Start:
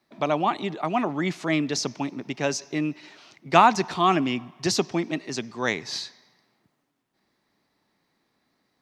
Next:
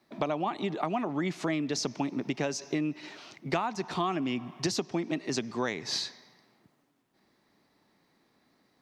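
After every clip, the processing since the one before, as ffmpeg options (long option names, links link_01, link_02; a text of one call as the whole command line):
ffmpeg -i in.wav -af "equalizer=frequency=310:width=0.44:gain=3,acompressor=threshold=-28dB:ratio=12,volume=1.5dB" out.wav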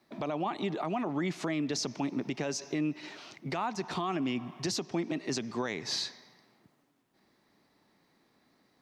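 ffmpeg -i in.wav -af "alimiter=limit=-23dB:level=0:latency=1:release=29" out.wav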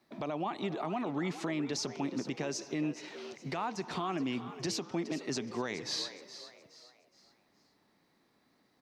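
ffmpeg -i in.wav -filter_complex "[0:a]asplit=5[link_01][link_02][link_03][link_04][link_05];[link_02]adelay=419,afreqshift=81,volume=-13dB[link_06];[link_03]adelay=838,afreqshift=162,volume=-21.4dB[link_07];[link_04]adelay=1257,afreqshift=243,volume=-29.8dB[link_08];[link_05]adelay=1676,afreqshift=324,volume=-38.2dB[link_09];[link_01][link_06][link_07][link_08][link_09]amix=inputs=5:normalize=0,volume=-2.5dB" out.wav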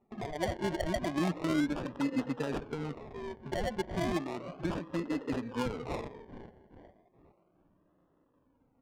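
ffmpeg -i in.wav -af "afftfilt=real='re*pow(10,22/40*sin(2*PI*(1.1*log(max(b,1)*sr/1024/100)/log(2)-(-0.31)*(pts-256)/sr)))':imag='im*pow(10,22/40*sin(2*PI*(1.1*log(max(b,1)*sr/1024/100)/log(2)-(-0.31)*(pts-256)/sr)))':win_size=1024:overlap=0.75,acrusher=samples=27:mix=1:aa=0.000001:lfo=1:lforange=16.2:lforate=0.34,adynamicsmooth=sensitivity=3.5:basefreq=1300,volume=-3dB" out.wav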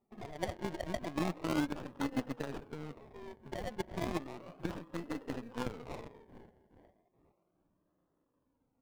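ffmpeg -i in.wav -filter_complex "[0:a]asplit=2[link_01][link_02];[link_02]acrusher=bits=5:mode=log:mix=0:aa=0.000001,volume=-3dB[link_03];[link_01][link_03]amix=inputs=2:normalize=0,aeval=exprs='0.158*(cos(1*acos(clip(val(0)/0.158,-1,1)))-cos(1*PI/2))+0.0794*(cos(3*acos(clip(val(0)/0.158,-1,1)))-cos(3*PI/2))+0.0224*(cos(5*acos(clip(val(0)/0.158,-1,1)))-cos(5*PI/2))+0.00178*(cos(7*acos(clip(val(0)/0.158,-1,1)))-cos(7*PI/2))+0.00178*(cos(8*acos(clip(val(0)/0.158,-1,1)))-cos(8*PI/2))':channel_layout=same,asoftclip=type=tanh:threshold=-28dB,volume=5.5dB" out.wav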